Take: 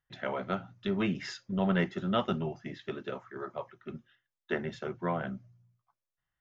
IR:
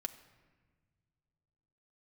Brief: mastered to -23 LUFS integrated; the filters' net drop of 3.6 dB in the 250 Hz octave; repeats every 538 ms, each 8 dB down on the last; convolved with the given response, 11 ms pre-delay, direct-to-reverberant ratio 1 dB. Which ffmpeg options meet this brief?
-filter_complex "[0:a]equalizer=f=250:t=o:g=-5.5,aecho=1:1:538|1076|1614|2152|2690:0.398|0.159|0.0637|0.0255|0.0102,asplit=2[s0][s1];[1:a]atrim=start_sample=2205,adelay=11[s2];[s1][s2]afir=irnorm=-1:irlink=0,volume=1.06[s3];[s0][s3]amix=inputs=2:normalize=0,volume=2.82"

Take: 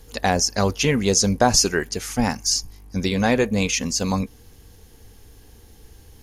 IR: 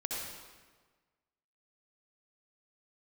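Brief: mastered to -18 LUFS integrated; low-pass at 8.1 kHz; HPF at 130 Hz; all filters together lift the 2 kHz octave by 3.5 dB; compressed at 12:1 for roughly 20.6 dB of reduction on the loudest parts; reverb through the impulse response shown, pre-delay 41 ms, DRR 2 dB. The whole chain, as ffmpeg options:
-filter_complex "[0:a]highpass=130,lowpass=8100,equalizer=f=2000:t=o:g=4.5,acompressor=threshold=0.0251:ratio=12,asplit=2[s0][s1];[1:a]atrim=start_sample=2205,adelay=41[s2];[s1][s2]afir=irnorm=-1:irlink=0,volume=0.562[s3];[s0][s3]amix=inputs=2:normalize=0,volume=6.31"

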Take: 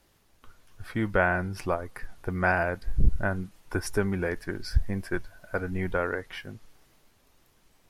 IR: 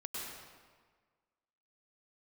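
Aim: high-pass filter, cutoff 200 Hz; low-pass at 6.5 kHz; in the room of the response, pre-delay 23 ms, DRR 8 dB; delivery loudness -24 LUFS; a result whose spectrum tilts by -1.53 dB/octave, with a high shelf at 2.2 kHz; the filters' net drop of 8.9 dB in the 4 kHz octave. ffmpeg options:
-filter_complex "[0:a]highpass=200,lowpass=6500,highshelf=f=2200:g=-7,equalizer=f=4000:t=o:g=-4,asplit=2[s0][s1];[1:a]atrim=start_sample=2205,adelay=23[s2];[s1][s2]afir=irnorm=-1:irlink=0,volume=0.376[s3];[s0][s3]amix=inputs=2:normalize=0,volume=2.51"

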